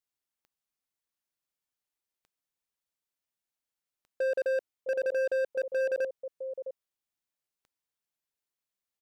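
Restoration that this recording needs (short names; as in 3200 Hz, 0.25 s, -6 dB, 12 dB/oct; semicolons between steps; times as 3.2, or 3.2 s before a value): clip repair -26 dBFS; de-click; inverse comb 0.66 s -13 dB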